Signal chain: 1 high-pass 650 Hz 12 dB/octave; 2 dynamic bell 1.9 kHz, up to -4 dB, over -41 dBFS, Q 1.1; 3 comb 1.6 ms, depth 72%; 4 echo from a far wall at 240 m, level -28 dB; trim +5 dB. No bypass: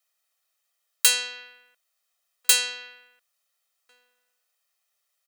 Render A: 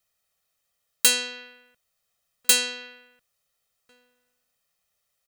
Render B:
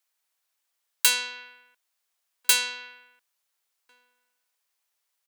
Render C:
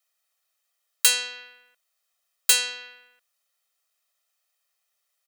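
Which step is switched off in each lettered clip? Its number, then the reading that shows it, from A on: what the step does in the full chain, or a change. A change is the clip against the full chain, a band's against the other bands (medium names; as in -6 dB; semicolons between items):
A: 1, 500 Hz band +6.0 dB; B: 3, 1 kHz band +6.5 dB; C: 4, echo-to-direct -32.5 dB to none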